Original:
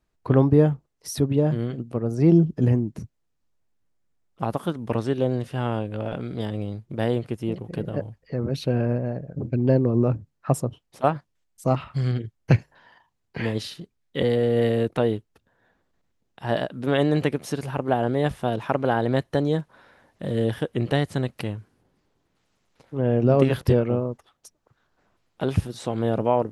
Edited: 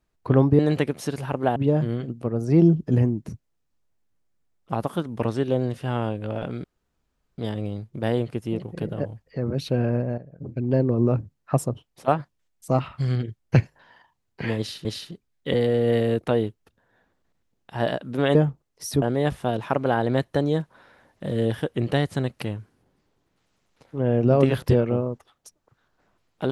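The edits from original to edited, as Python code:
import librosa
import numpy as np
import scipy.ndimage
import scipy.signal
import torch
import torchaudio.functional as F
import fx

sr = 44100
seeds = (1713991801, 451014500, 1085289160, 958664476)

y = fx.edit(x, sr, fx.swap(start_s=0.59, length_s=0.67, other_s=17.04, other_length_s=0.97),
    fx.insert_room_tone(at_s=6.34, length_s=0.74),
    fx.fade_in_from(start_s=9.14, length_s=0.81, floor_db=-12.0),
    fx.repeat(start_s=13.54, length_s=0.27, count=2), tone=tone)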